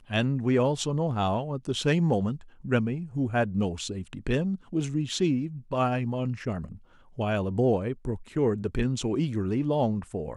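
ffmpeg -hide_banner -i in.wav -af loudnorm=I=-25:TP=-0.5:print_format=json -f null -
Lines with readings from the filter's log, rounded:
"input_i" : "-28.0",
"input_tp" : "-12.1",
"input_lra" : "2.2",
"input_thresh" : "-38.2",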